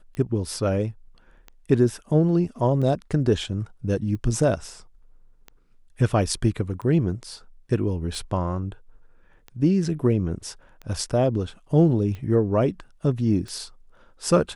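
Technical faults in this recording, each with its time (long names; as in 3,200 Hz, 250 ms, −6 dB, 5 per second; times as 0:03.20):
scratch tick 45 rpm −24 dBFS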